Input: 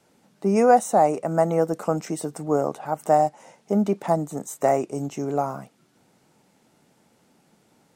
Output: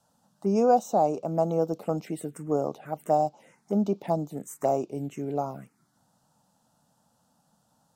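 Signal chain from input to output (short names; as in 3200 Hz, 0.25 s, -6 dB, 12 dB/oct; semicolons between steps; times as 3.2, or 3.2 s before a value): envelope phaser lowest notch 370 Hz, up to 1900 Hz, full sweep at -20.5 dBFS; gain -3.5 dB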